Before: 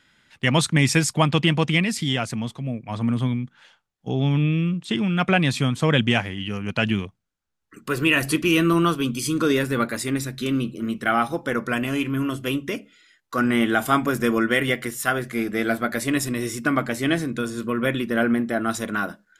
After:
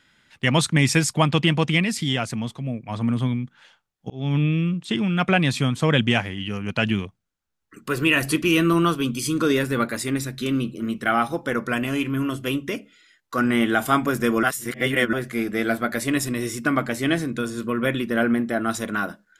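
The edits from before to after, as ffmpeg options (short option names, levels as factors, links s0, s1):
-filter_complex "[0:a]asplit=4[s0][s1][s2][s3];[s0]atrim=end=4.1,asetpts=PTS-STARTPTS,afade=t=out:st=4.096:d=0.004:c=hsin[s4];[s1]atrim=start=4.1:end=14.432,asetpts=PTS-STARTPTS,afade=t=in:d=0.26[s5];[s2]atrim=start=14.428:end=15.132,asetpts=PTS-STARTPTS,areverse[s6];[s3]atrim=start=15.128[s7];[s4][s5]concat=n=2:v=0:a=1[s8];[s8][s6]acrossfade=d=0.004:c1=hsin:c2=hsin[s9];[s9][s7]acrossfade=d=0.004:c1=hsin:c2=hsin"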